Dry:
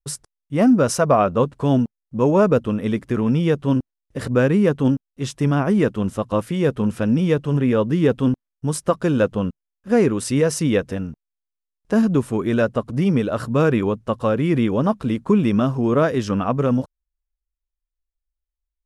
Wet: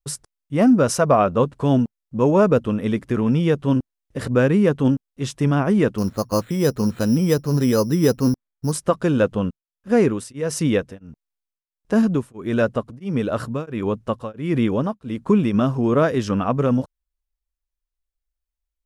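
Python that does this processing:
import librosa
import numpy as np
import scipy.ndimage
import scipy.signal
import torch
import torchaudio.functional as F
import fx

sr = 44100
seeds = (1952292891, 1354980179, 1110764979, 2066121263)

y = fx.resample_bad(x, sr, factor=8, down='filtered', up='hold', at=(5.98, 8.72))
y = fx.tremolo_abs(y, sr, hz=1.5, at=(9.49, 15.53), fade=0.02)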